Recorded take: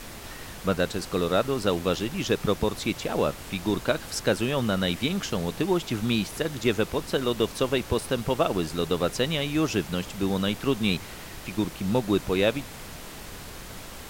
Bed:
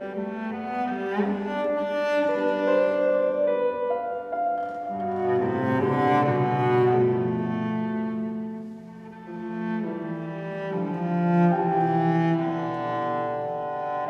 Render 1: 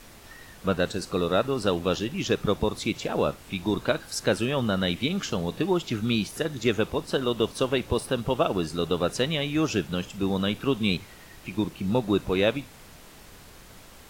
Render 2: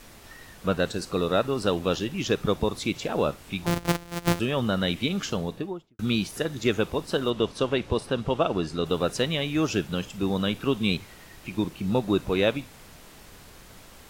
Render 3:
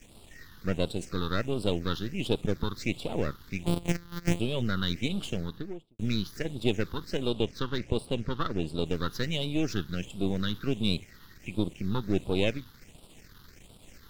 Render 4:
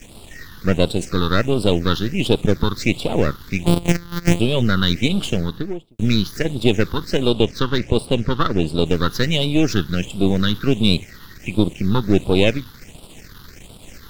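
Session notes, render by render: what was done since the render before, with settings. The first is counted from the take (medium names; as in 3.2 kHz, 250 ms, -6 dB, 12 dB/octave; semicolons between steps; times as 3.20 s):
noise print and reduce 8 dB
3.66–4.40 s: sorted samples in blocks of 256 samples; 5.29–5.99 s: studio fade out; 7.30–8.86 s: distance through air 53 m
partial rectifier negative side -12 dB; phase shifter stages 6, 1.4 Hz, lowest notch 620–1800 Hz
trim +12 dB; peak limiter -1 dBFS, peak gain reduction 2 dB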